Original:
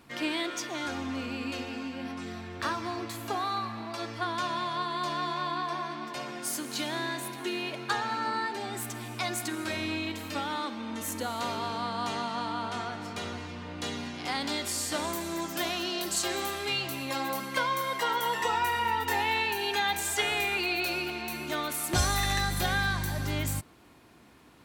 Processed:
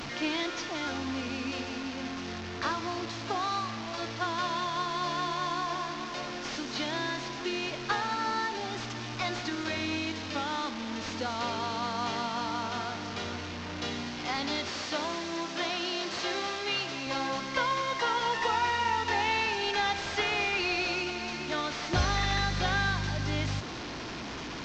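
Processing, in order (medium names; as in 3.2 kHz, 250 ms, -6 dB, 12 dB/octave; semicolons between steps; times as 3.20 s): one-bit delta coder 32 kbps, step -32.5 dBFS; 14.69–17.07 s: high-pass 200 Hz 6 dB/octave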